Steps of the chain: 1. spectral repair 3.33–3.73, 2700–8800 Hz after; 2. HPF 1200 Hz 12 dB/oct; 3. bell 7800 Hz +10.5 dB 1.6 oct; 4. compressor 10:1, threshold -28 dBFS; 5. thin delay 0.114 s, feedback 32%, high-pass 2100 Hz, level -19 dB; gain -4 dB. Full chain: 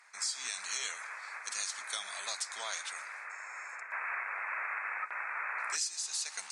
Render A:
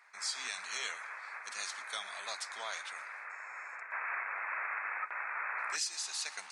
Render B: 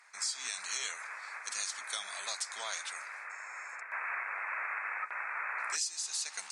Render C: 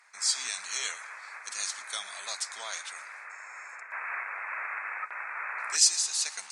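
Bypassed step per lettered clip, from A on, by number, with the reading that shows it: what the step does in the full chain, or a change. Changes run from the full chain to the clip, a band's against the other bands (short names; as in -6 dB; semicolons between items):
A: 3, 8 kHz band -4.5 dB; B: 5, echo-to-direct -23.5 dB to none; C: 4, mean gain reduction 2.0 dB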